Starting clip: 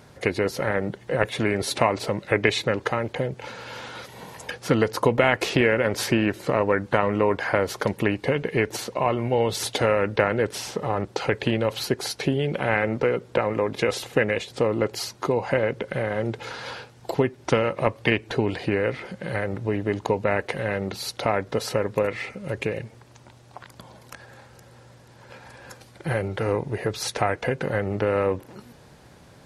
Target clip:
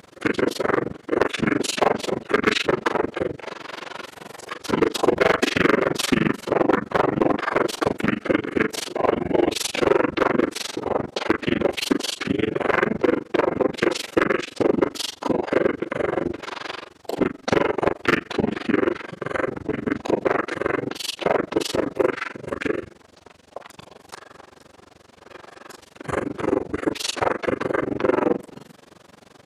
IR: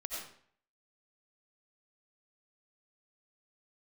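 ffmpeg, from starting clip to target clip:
-filter_complex "[0:a]highpass=260,bandreject=frequency=910:width=27,asplit=3[link_01][link_02][link_03];[link_02]asetrate=29433,aresample=44100,atempo=1.49831,volume=-2dB[link_04];[link_03]asetrate=33038,aresample=44100,atempo=1.33484,volume=0dB[link_05];[link_01][link_04][link_05]amix=inputs=3:normalize=0,aecho=1:1:23|37:0.266|0.398,asoftclip=type=hard:threshold=-11dB,asplit=2[link_06][link_07];[1:a]atrim=start_sample=2205[link_08];[link_07][link_08]afir=irnorm=-1:irlink=0,volume=-22.5dB[link_09];[link_06][link_09]amix=inputs=2:normalize=0,tremolo=f=23:d=1,volume=2.5dB"

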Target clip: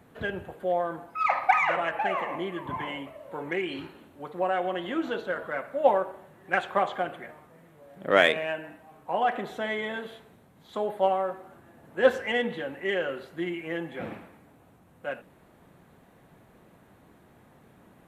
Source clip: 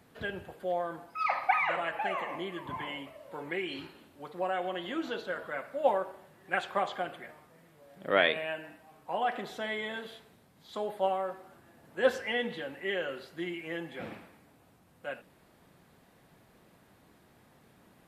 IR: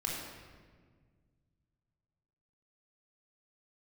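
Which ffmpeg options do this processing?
-filter_complex "[0:a]asplit=2[link_01][link_02];[link_02]adynamicsmooth=sensitivity=3:basefreq=2700,volume=-1dB[link_03];[link_01][link_03]amix=inputs=2:normalize=0,equalizer=frequency=4900:width=4.4:gain=-6.5"

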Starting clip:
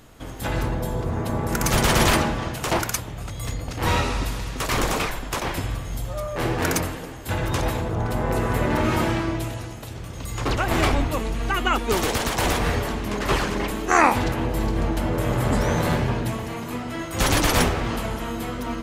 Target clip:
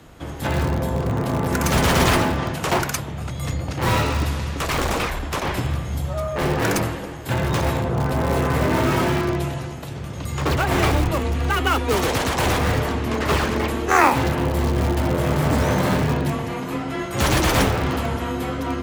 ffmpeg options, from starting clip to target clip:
ffmpeg -i in.wav -filter_complex "[0:a]highshelf=frequency=4800:gain=-6,asplit=2[link_01][link_02];[link_02]aeval=exprs='(mod(7.5*val(0)+1,2)-1)/7.5':channel_layout=same,volume=-11dB[link_03];[link_01][link_03]amix=inputs=2:normalize=0,afreqshift=25,asettb=1/sr,asplit=3[link_04][link_05][link_06];[link_04]atrim=end=4.514[link_07];[link_05]atrim=start=4.51:end=5.49,asetpts=PTS-STARTPTS,afade=type=in:duration=0.004:curve=qsin,afade=type=out:start_time=0.976:duration=0.004:curve=qsin,aeval=exprs='clip(val(0),-1,0.0668)':channel_layout=same[link_08];[link_06]atrim=start=5.486[link_09];[link_07][link_08]acrossfade=duration=0.004:curve1=hsin:curve2=qsin[link_10];[link_10][link_09]acrossfade=duration=0.004:curve1=qsin:curve2=hsin,volume=1.5dB" out.wav

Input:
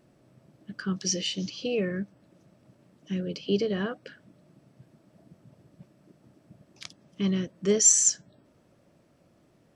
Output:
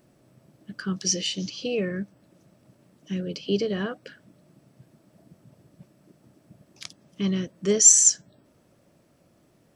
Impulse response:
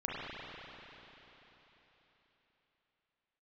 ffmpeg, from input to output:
-af "highshelf=frequency=8200:gain=9.5,volume=1dB"

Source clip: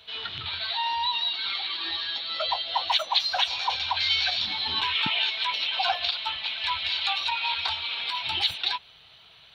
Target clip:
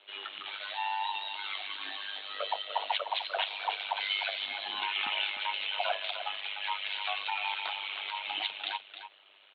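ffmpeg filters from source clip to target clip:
ffmpeg -i in.wav -af "aecho=1:1:301:0.316,tremolo=f=100:d=0.75,highpass=frequency=360:width_type=q:width=0.5412,highpass=frequency=360:width_type=q:width=1.307,lowpass=frequency=3300:width_type=q:width=0.5176,lowpass=frequency=3300:width_type=q:width=0.7071,lowpass=frequency=3300:width_type=q:width=1.932,afreqshift=-52,volume=-1.5dB" out.wav

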